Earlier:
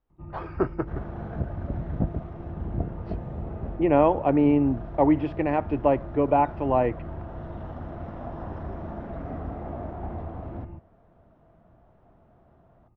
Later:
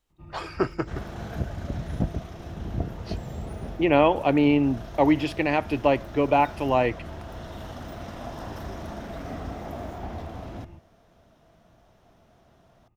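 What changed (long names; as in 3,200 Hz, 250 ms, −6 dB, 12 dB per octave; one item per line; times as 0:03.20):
first sound −5.0 dB
master: remove low-pass filter 1,300 Hz 12 dB per octave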